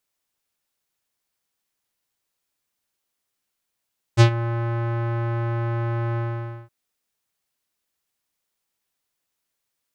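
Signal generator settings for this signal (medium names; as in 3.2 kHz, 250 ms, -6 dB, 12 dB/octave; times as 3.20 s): synth note square A#2 12 dB/octave, low-pass 1.5 kHz, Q 1.3, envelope 2.5 oct, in 0.17 s, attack 37 ms, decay 0.09 s, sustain -15 dB, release 0.52 s, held 2.00 s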